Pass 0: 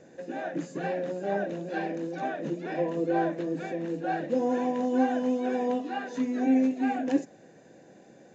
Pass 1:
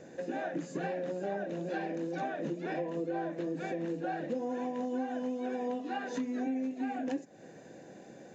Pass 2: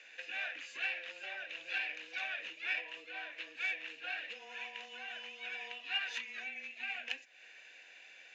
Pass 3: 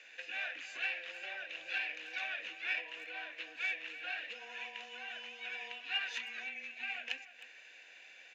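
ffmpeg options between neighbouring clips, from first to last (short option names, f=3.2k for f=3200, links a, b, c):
-af "acompressor=threshold=-35dB:ratio=6,volume=2.5dB"
-af "adynamicsmooth=sensitivity=4:basefreq=3.4k,afreqshift=-19,highpass=f=2.6k:t=q:w=4.5,volume=8dB"
-filter_complex "[0:a]asplit=2[a][b];[b]adelay=310,highpass=300,lowpass=3.4k,asoftclip=type=hard:threshold=-28.5dB,volume=-13dB[c];[a][c]amix=inputs=2:normalize=0"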